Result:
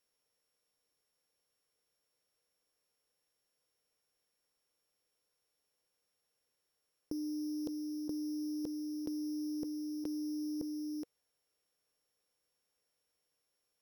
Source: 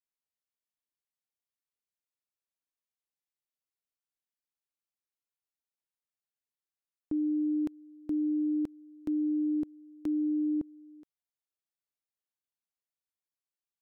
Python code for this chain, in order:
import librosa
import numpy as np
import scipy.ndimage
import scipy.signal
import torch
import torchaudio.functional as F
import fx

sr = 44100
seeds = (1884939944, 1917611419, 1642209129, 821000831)

y = np.r_[np.sort(x[:len(x) // 8 * 8].reshape(-1, 8), axis=1).ravel(), x[len(x) // 8 * 8:]]
y = fx.peak_eq(y, sr, hz=480.0, db=10.5, octaves=0.53)
y = fx.over_compress(y, sr, threshold_db=-38.0, ratio=-1.0)
y = y * librosa.db_to_amplitude(1.0)